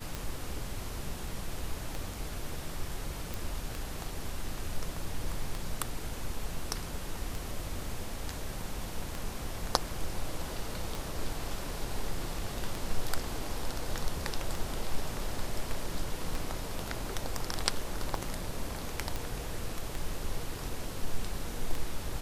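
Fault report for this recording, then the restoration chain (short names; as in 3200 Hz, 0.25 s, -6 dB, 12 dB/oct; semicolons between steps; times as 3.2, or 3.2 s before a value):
tick 33 1/3 rpm
3.34 pop
19.16 pop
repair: de-click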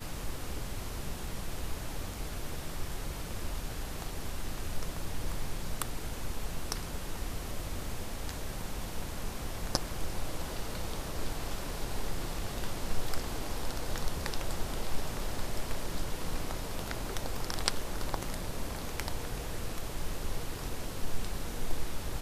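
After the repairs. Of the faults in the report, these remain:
none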